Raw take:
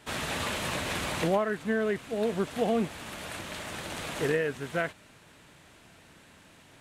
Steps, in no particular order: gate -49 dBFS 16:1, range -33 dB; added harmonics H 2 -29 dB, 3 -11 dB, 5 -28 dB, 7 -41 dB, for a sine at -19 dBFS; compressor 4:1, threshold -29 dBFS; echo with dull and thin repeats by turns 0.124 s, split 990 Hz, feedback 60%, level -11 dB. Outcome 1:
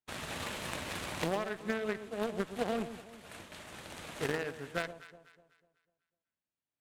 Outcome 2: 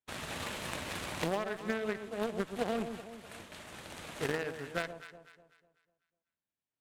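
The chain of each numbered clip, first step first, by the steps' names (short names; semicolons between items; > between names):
added harmonics > gate > compressor > echo with dull and thin repeats by turns; added harmonics > gate > echo with dull and thin repeats by turns > compressor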